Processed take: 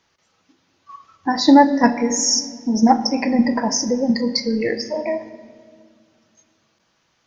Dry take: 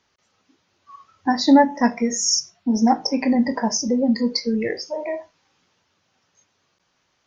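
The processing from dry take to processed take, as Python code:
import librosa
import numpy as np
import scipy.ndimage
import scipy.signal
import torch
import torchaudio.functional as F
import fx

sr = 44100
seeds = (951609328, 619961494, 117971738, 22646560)

p1 = fx.level_steps(x, sr, step_db=15)
p2 = x + (p1 * 10.0 ** (0.0 / 20.0))
p3 = fx.room_shoebox(p2, sr, seeds[0], volume_m3=3100.0, walls='mixed', distance_m=0.69)
y = p3 * 10.0 ** (-1.0 / 20.0)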